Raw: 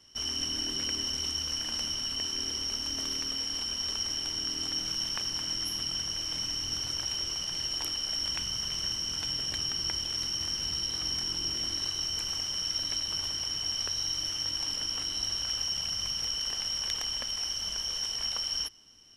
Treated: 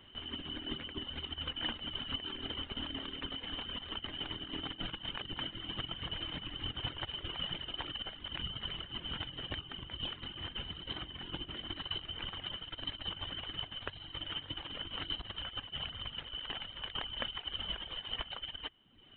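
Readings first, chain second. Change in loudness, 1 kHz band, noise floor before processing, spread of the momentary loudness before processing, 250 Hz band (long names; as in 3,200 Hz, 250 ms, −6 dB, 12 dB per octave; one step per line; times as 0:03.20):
−10.0 dB, −0.5 dB, −36 dBFS, 1 LU, −1.0 dB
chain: reverb reduction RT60 0.76 s
compressor whose output falls as the input rises −38 dBFS, ratio −0.5
downsampling to 8,000 Hz
level +3.5 dB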